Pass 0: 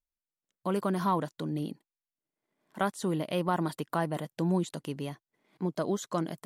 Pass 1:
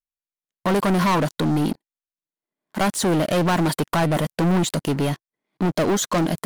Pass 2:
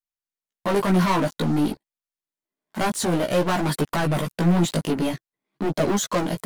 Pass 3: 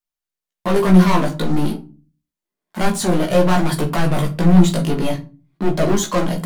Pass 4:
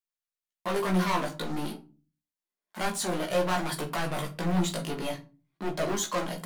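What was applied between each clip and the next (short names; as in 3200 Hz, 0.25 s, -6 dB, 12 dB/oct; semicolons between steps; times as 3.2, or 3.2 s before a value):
sample leveller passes 5
chorus voices 2, 0.52 Hz, delay 16 ms, depth 2.3 ms; gain +1 dB
shoebox room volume 170 m³, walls furnished, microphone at 0.92 m; gain +2 dB
low shelf 380 Hz -11.5 dB; gain -7 dB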